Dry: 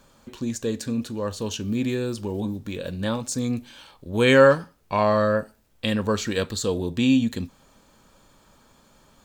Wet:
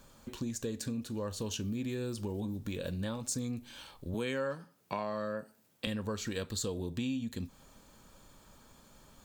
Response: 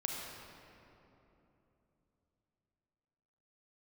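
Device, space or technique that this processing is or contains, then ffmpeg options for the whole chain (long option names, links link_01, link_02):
ASMR close-microphone chain: -filter_complex "[0:a]asettb=1/sr,asplit=3[link_01][link_02][link_03];[link_01]atrim=end=4.144[link_04];[link_02]atrim=start=4.14:end=5.87,asetpts=PTS-STARTPTS,afade=type=in:duration=0.004:curve=qsin,afade=type=out:start_time=1.726:duration=0.004:curve=qsin,highpass=frequency=130:width=0.5412,highpass=frequency=130:width=1.3066[link_05];[link_03]atrim=start=5.866[link_06];[link_04][link_05]acrossfade=duration=0.004:curve1=hsin:curve2=qsin[link_07];[link_07][link_06]acrossfade=duration=0.004:curve1=qsin:curve2=hsin,lowshelf=frequency=160:gain=4.5,acompressor=threshold=-30dB:ratio=5,highshelf=frequency=7500:gain=6.5,volume=-4dB"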